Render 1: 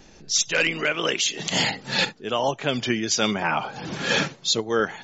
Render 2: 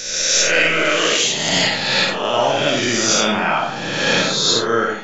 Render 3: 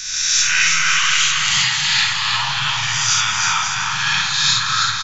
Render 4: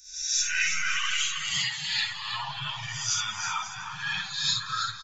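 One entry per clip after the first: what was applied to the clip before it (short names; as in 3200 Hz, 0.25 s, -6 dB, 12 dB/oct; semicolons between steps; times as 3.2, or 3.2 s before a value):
spectral swells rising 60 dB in 1.44 s; reverb RT60 0.50 s, pre-delay 15 ms, DRR 0 dB
elliptic band-stop 140–1000 Hz, stop band 40 dB; on a send: bouncing-ball echo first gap 0.32 s, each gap 0.7×, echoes 5
per-bin expansion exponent 2; gain -6.5 dB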